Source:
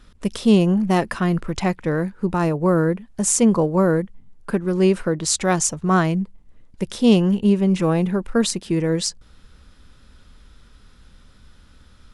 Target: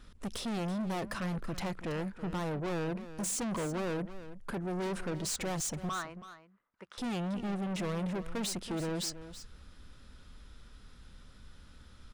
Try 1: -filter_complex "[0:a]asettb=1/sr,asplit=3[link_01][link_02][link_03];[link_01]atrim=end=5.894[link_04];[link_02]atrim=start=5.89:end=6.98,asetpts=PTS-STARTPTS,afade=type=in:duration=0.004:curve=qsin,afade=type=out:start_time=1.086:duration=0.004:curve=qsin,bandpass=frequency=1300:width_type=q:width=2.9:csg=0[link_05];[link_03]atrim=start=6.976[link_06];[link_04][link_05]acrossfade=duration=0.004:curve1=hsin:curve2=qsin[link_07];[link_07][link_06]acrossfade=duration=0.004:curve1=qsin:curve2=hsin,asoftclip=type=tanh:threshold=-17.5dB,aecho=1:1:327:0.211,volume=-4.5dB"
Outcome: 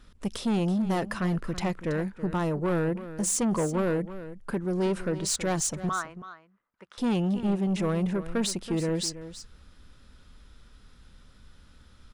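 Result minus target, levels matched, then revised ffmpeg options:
soft clipping: distortion −6 dB
-filter_complex "[0:a]asettb=1/sr,asplit=3[link_01][link_02][link_03];[link_01]atrim=end=5.894[link_04];[link_02]atrim=start=5.89:end=6.98,asetpts=PTS-STARTPTS,afade=type=in:duration=0.004:curve=qsin,afade=type=out:start_time=1.086:duration=0.004:curve=qsin,bandpass=frequency=1300:width_type=q:width=2.9:csg=0[link_05];[link_03]atrim=start=6.976[link_06];[link_04][link_05]acrossfade=duration=0.004:curve1=hsin:curve2=qsin[link_07];[link_07][link_06]acrossfade=duration=0.004:curve1=qsin:curve2=hsin,asoftclip=type=tanh:threshold=-28.5dB,aecho=1:1:327:0.211,volume=-4.5dB"

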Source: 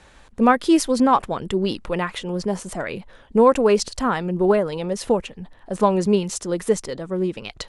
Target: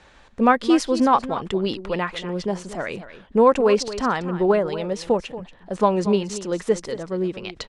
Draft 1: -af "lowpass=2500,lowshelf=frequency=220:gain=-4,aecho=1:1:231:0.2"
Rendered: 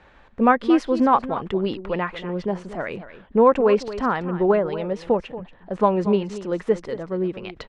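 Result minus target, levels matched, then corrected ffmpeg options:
8,000 Hz band −14.0 dB
-af "lowpass=6100,lowshelf=frequency=220:gain=-4,aecho=1:1:231:0.2"

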